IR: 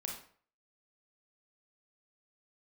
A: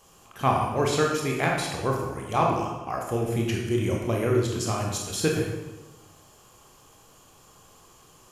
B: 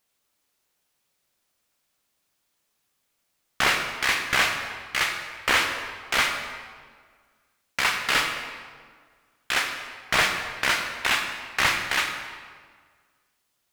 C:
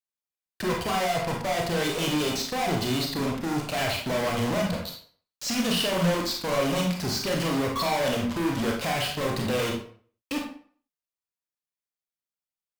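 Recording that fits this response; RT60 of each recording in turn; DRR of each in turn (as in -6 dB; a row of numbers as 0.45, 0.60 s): C; 1.2, 1.7, 0.50 s; -1.0, 3.0, 0.0 dB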